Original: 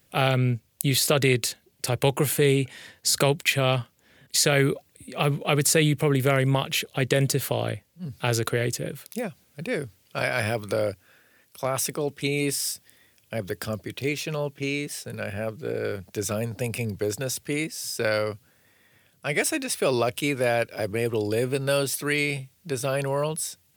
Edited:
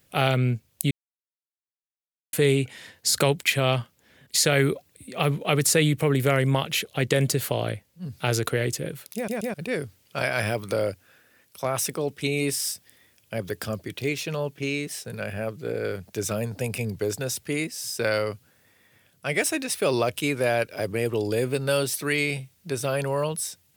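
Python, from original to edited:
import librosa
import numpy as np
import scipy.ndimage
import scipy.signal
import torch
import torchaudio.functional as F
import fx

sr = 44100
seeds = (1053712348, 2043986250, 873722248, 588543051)

y = fx.edit(x, sr, fx.silence(start_s=0.91, length_s=1.42),
    fx.stutter_over(start_s=9.15, slice_s=0.13, count=3), tone=tone)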